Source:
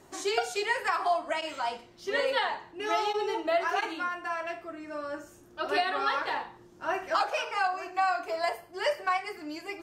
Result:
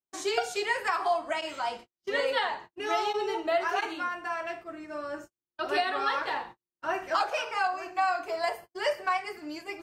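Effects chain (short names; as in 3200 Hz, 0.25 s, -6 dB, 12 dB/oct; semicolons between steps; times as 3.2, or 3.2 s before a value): gate -43 dBFS, range -47 dB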